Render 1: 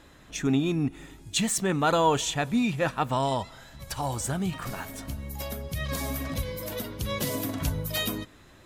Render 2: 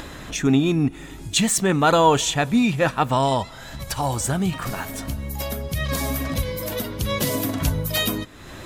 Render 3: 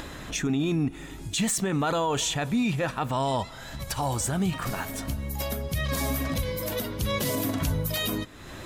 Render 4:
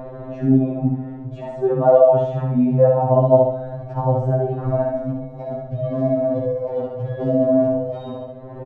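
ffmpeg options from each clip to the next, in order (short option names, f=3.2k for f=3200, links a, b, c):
-af "acompressor=mode=upward:threshold=-33dB:ratio=2.5,volume=6.5dB"
-af "alimiter=limit=-15.5dB:level=0:latency=1:release=25,volume=-2.5dB"
-filter_complex "[0:a]lowpass=f=650:t=q:w=3.4,asplit=2[a][b];[b]aecho=0:1:68|136|204|272|340|408:0.668|0.294|0.129|0.0569|0.0251|0.011[c];[a][c]amix=inputs=2:normalize=0,afftfilt=real='re*2.45*eq(mod(b,6),0)':imag='im*2.45*eq(mod(b,6),0)':win_size=2048:overlap=0.75,volume=6dB"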